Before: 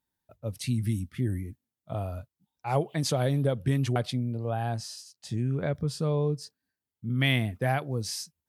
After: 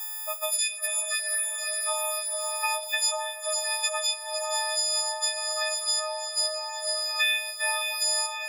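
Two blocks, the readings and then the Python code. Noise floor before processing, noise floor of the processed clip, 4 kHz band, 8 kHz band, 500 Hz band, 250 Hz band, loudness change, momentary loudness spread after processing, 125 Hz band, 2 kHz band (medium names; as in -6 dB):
under -85 dBFS, -37 dBFS, +12.0 dB, +16.5 dB, -2.0 dB, under -40 dB, +3.5 dB, 4 LU, under -40 dB, +7.5 dB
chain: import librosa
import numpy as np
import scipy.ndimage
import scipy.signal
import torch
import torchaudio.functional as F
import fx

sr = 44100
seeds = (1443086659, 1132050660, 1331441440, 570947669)

p1 = fx.freq_snap(x, sr, grid_st=6)
p2 = fx.over_compress(p1, sr, threshold_db=-31.0, ratio=-0.5)
p3 = p1 + (p2 * 10.0 ** (-0.5 / 20.0))
p4 = scipy.signal.sosfilt(scipy.signal.butter(16, 650.0, 'highpass', fs=sr, output='sos'), p3)
p5 = fx.echo_diffused(p4, sr, ms=492, feedback_pct=62, wet_db=-10.5)
p6 = fx.rev_schroeder(p5, sr, rt60_s=0.33, comb_ms=26, drr_db=14.5)
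p7 = fx.band_squash(p6, sr, depth_pct=100)
y = p7 * 10.0 ** (-2.0 / 20.0)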